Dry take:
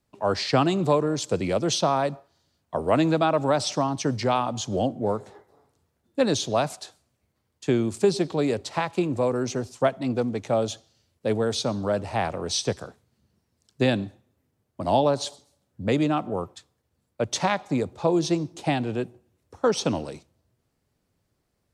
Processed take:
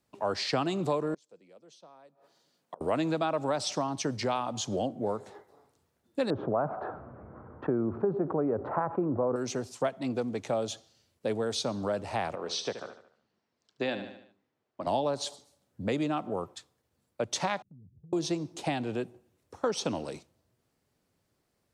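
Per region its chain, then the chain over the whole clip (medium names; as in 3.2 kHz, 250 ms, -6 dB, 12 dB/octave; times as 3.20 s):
1.14–2.81 s: high-pass 150 Hz 24 dB/octave + peaking EQ 490 Hz +5 dB 0.28 oct + inverted gate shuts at -26 dBFS, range -32 dB
6.30–9.36 s: block-companded coder 7-bit + Chebyshev low-pass 1.4 kHz, order 4 + level flattener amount 50%
12.35–14.87 s: high-pass 470 Hz 6 dB/octave + distance through air 140 m + feedback delay 74 ms, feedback 47%, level -11.5 dB
17.62–18.13 s: inverse Chebyshev low-pass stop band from 1 kHz, stop band 80 dB + compression, threshold -47 dBFS
whole clip: bass shelf 110 Hz -9.5 dB; compression 2:1, threshold -31 dBFS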